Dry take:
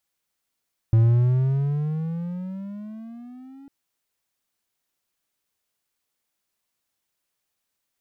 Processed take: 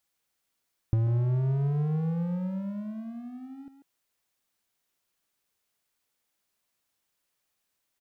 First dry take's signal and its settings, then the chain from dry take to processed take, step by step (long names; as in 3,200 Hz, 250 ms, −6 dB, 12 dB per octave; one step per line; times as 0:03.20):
pitch glide with a swell triangle, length 2.75 s, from 111 Hz, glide +16 semitones, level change −29.5 dB, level −10.5 dB
dynamic equaliser 670 Hz, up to +4 dB, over −44 dBFS, Q 0.85
downward compressor 4 to 1, threshold −24 dBFS
far-end echo of a speakerphone 140 ms, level −7 dB